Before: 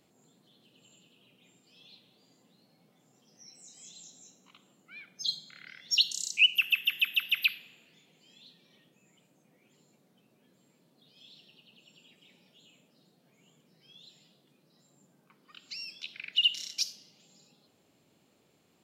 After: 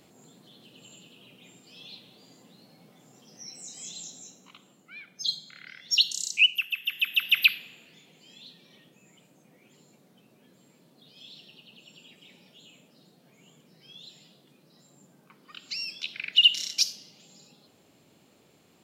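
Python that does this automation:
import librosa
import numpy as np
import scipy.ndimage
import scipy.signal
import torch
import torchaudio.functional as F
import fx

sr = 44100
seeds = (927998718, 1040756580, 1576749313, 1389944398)

y = fx.gain(x, sr, db=fx.line((4.0, 10.0), (4.99, 3.0), (6.41, 3.0), (6.7, -5.0), (7.37, 7.0)))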